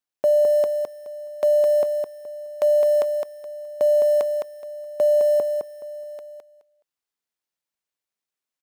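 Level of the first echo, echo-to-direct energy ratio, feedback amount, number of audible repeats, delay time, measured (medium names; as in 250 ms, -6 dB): -5.0 dB, -5.0 dB, 21%, 3, 211 ms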